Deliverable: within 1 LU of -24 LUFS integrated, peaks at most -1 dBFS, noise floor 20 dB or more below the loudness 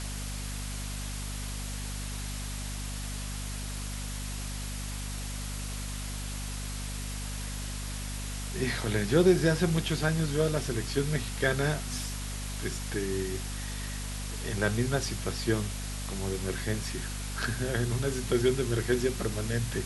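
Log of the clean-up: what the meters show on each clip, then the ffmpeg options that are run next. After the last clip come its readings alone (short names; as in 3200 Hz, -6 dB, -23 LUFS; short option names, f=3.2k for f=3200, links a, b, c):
hum 50 Hz; harmonics up to 250 Hz; hum level -34 dBFS; noise floor -36 dBFS; noise floor target -52 dBFS; loudness -31.5 LUFS; peak -10.5 dBFS; loudness target -24.0 LUFS
-> -af "bandreject=f=50:t=h:w=4,bandreject=f=100:t=h:w=4,bandreject=f=150:t=h:w=4,bandreject=f=200:t=h:w=4,bandreject=f=250:t=h:w=4"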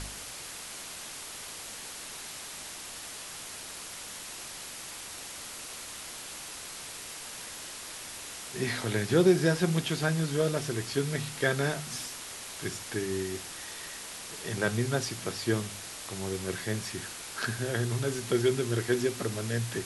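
hum none; noise floor -43 dBFS; noise floor target -53 dBFS
-> -af "afftdn=nr=10:nf=-43"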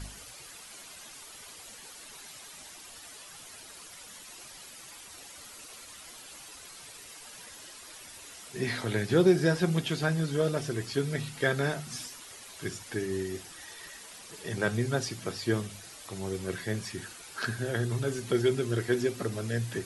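noise floor -48 dBFS; noise floor target -51 dBFS
-> -af "afftdn=nr=6:nf=-48"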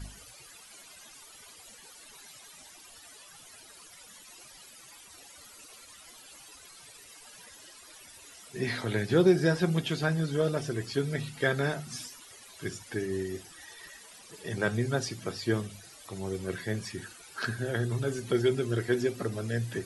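noise floor -52 dBFS; loudness -30.5 LUFS; peak -11.0 dBFS; loudness target -24.0 LUFS
-> -af "volume=6.5dB"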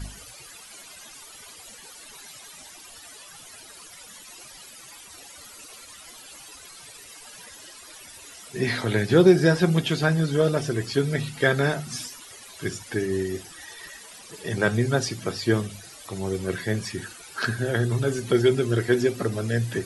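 loudness -24.0 LUFS; peak -4.5 dBFS; noise floor -46 dBFS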